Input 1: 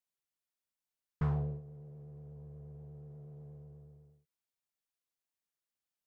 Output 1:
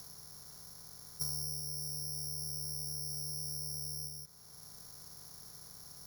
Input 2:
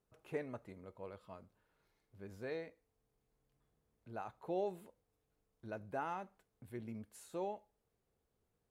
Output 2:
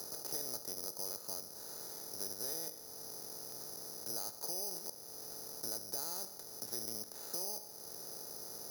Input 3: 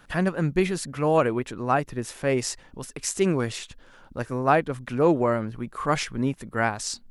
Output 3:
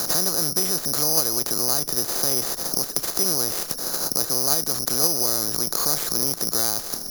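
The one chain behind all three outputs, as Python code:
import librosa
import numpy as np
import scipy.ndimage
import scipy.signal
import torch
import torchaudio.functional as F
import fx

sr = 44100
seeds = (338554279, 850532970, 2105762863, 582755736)

p1 = fx.bin_compress(x, sr, power=0.4)
p2 = scipy.signal.sosfilt(scipy.signal.butter(2, 2000.0, 'lowpass', fs=sr, output='sos'), p1)
p3 = fx.level_steps(p2, sr, step_db=14)
p4 = p2 + F.gain(torch.from_numpy(p3), 0.0).numpy()
p5 = (np.kron(p4[::8], np.eye(8)[0]) * 8)[:len(p4)]
p6 = fx.band_squash(p5, sr, depth_pct=70)
y = F.gain(torch.from_numpy(p6), -16.0).numpy()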